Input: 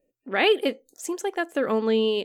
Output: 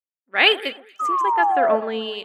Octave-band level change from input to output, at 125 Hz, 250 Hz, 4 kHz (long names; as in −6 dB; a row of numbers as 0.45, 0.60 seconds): can't be measured, −5.0 dB, +7.5 dB